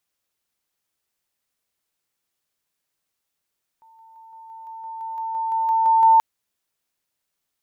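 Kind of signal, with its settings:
level staircase 898 Hz −49 dBFS, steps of 3 dB, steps 14, 0.17 s 0.00 s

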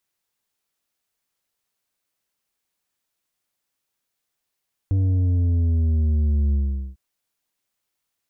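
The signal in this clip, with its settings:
bass drop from 97 Hz, over 2.05 s, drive 7 dB, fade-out 0.43 s, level −17.5 dB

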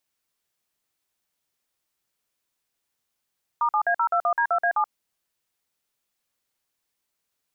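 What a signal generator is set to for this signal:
touch tones "*7A021D2A7", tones 79 ms, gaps 49 ms, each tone −21.5 dBFS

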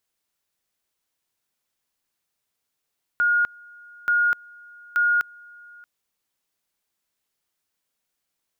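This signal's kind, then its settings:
tone at two levels in turn 1,430 Hz −16.5 dBFS, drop 26.5 dB, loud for 0.25 s, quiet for 0.63 s, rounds 3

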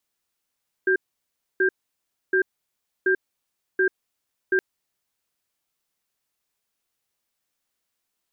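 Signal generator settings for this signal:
tone pair in a cadence 376 Hz, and 1,590 Hz, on 0.09 s, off 0.64 s, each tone −19.5 dBFS 3.72 s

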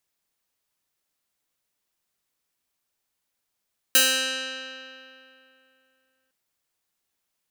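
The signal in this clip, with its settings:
Karplus-Strong string C4, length 2.36 s, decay 2.81 s, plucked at 0.23, bright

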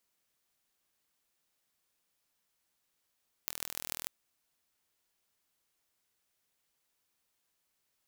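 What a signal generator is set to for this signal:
impulse train 40.7 per second, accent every 6, −6.5 dBFS 0.60 s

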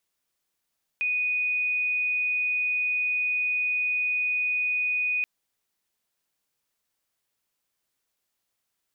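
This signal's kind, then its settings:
tone sine 2,480 Hz −23 dBFS 4.23 s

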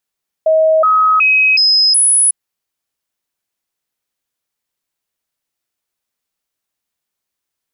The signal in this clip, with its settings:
stepped sweep 635 Hz up, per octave 1, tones 5, 0.37 s, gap 0.00 s −7.5 dBFS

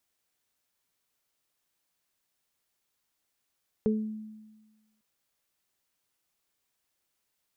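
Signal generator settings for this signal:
harmonic partials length 1.15 s, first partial 216 Hz, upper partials 0 dB, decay 1.31 s, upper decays 0.33 s, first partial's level −22.5 dB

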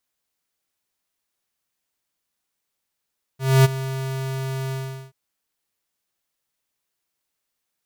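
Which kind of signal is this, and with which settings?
note with an ADSR envelope square 133 Hz, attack 256 ms, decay 23 ms, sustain −15.5 dB, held 1.33 s, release 401 ms −11.5 dBFS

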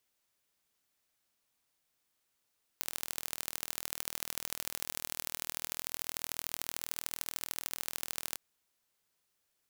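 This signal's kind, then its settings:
impulse train 40.2 per second, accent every 3, −7 dBFS 5.57 s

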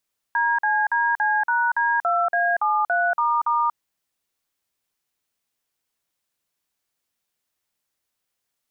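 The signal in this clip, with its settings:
touch tones "DCDC#D2A73**", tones 236 ms, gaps 47 ms, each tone −20.5 dBFS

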